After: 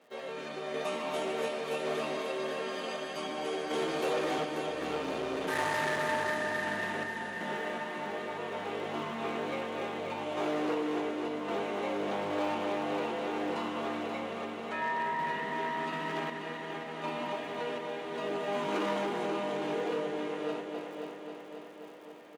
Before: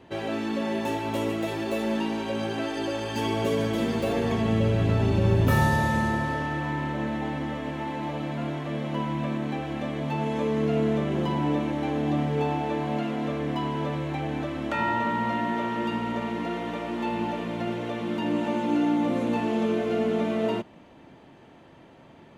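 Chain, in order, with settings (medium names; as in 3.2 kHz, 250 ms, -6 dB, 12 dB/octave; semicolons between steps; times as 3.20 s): frequency-shifting echo 262 ms, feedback 37%, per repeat +73 Hz, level -16.5 dB; formant-preserving pitch shift -6.5 st; crackle 120 per s -48 dBFS; random-step tremolo 2.7 Hz, depth 65%; multi-head delay 268 ms, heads first and second, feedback 65%, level -10.5 dB; hard clipper -23.5 dBFS, distortion -13 dB; high-pass 400 Hz 12 dB/octave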